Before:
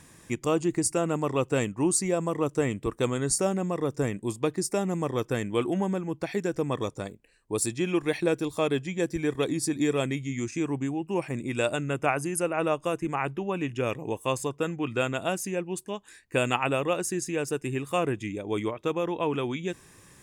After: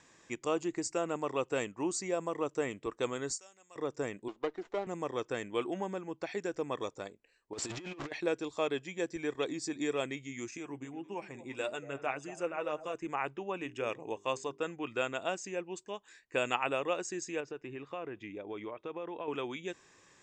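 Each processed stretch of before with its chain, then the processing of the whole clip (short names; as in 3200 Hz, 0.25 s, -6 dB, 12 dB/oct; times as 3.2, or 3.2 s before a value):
3.33–3.76 pre-emphasis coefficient 0.97 + transient shaper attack 0 dB, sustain -6 dB
4.28–4.87 BPF 310–2600 Hz + running maximum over 9 samples
7.53–8.12 zero-crossing step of -30 dBFS + LPF 3700 Hz 6 dB/oct + negative-ratio compressor -30 dBFS, ratio -0.5
10.57–12.95 flange 1.7 Hz, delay 4.2 ms, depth 4.2 ms, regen +45% + delay with a stepping band-pass 0.116 s, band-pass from 210 Hz, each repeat 1.4 oct, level -9 dB
13.57–14.62 notches 50/100/150/200/250/300/350/400 Hz + careless resampling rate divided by 3×, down filtered, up zero stuff
17.4–19.28 compressor, threshold -28 dBFS + air absorption 210 m
whole clip: steep low-pass 7800 Hz 72 dB/oct; tone controls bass -13 dB, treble -1 dB; gain -5 dB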